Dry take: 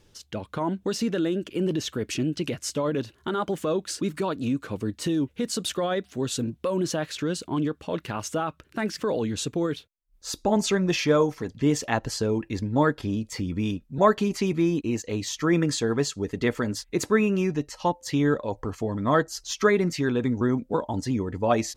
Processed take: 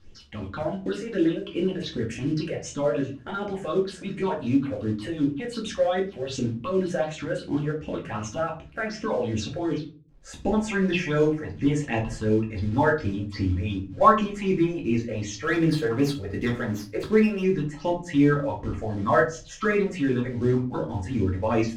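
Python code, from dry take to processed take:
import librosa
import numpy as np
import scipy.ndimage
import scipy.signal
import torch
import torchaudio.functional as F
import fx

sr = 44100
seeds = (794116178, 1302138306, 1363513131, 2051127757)

y = fx.dynamic_eq(x, sr, hz=200.0, q=1.8, threshold_db=-40.0, ratio=4.0, max_db=-7)
y = fx.phaser_stages(y, sr, stages=6, low_hz=250.0, high_hz=1300.0, hz=2.7, feedback_pct=40)
y = fx.quant_companded(y, sr, bits=6)
y = fx.air_absorb(y, sr, metres=110.0)
y = fx.room_shoebox(y, sr, seeds[0], volume_m3=200.0, walls='furnished', distance_m=2.2)
y = fx.running_max(y, sr, window=3, at=(15.44, 17.44))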